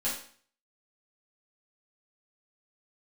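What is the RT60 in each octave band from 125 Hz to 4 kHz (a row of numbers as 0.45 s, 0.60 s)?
0.50 s, 0.50 s, 0.50 s, 0.50 s, 0.50 s, 0.50 s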